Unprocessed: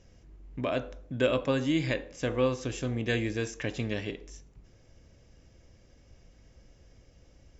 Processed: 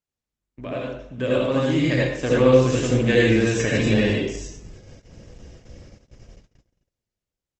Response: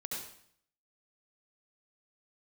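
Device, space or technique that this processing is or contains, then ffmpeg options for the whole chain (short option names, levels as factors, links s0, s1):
speakerphone in a meeting room: -filter_complex "[1:a]atrim=start_sample=2205[s0];[0:a][s0]afir=irnorm=-1:irlink=0,asplit=2[s1][s2];[s2]adelay=350,highpass=300,lowpass=3400,asoftclip=type=hard:threshold=0.0891,volume=0.0398[s3];[s1][s3]amix=inputs=2:normalize=0,dynaudnorm=f=220:g=17:m=6.31,agate=range=0.0158:threshold=0.00794:ratio=16:detection=peak" -ar 48000 -c:a libopus -b:a 16k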